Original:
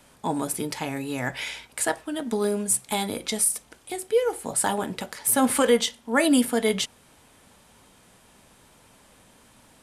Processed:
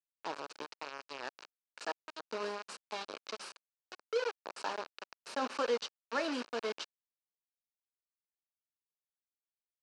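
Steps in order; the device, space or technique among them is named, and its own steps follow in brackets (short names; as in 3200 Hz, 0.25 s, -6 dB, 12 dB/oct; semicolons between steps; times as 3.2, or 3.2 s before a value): hand-held game console (bit-crush 4-bit; speaker cabinet 490–4700 Hz, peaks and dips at 740 Hz -6 dB, 2000 Hz -10 dB, 3400 Hz -10 dB); gain -8.5 dB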